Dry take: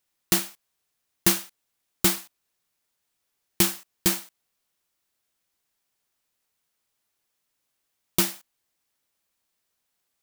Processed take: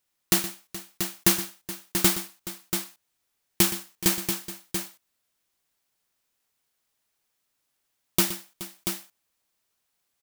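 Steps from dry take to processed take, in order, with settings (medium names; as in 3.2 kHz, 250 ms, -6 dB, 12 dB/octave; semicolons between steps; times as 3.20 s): multi-tap echo 120/424/685 ms -13.5/-16/-7.5 dB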